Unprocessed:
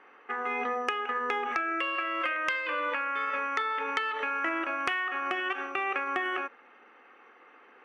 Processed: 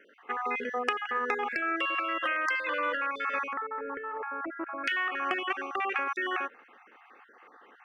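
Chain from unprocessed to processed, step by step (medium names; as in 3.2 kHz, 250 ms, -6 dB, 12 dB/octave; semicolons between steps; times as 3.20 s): random holes in the spectrogram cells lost 30%; 3.53–4.84 s: Bessel low-pass 1 kHz, order 6; trim +1.5 dB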